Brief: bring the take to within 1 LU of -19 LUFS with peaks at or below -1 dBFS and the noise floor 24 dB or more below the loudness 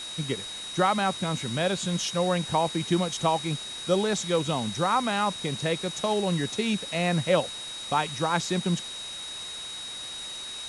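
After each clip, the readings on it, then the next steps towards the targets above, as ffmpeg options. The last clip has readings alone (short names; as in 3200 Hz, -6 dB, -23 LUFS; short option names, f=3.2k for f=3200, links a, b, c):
steady tone 3800 Hz; tone level -36 dBFS; noise floor -38 dBFS; noise floor target -52 dBFS; loudness -27.5 LUFS; peak -10.5 dBFS; loudness target -19.0 LUFS
-> -af "bandreject=f=3.8k:w=30"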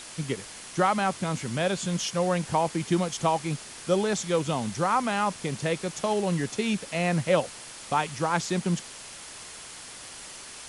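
steady tone none; noise floor -43 dBFS; noise floor target -52 dBFS
-> -af "afftdn=nr=9:nf=-43"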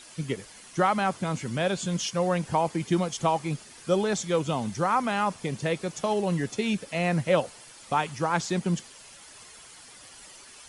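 noise floor -49 dBFS; noise floor target -52 dBFS
-> -af "afftdn=nr=6:nf=-49"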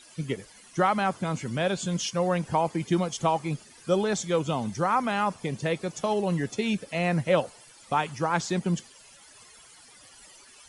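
noise floor -53 dBFS; loudness -27.5 LUFS; peak -11.0 dBFS; loudness target -19.0 LUFS
-> -af "volume=8.5dB"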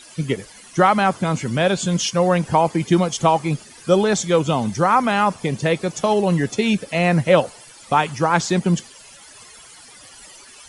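loudness -19.0 LUFS; peak -2.5 dBFS; noise floor -44 dBFS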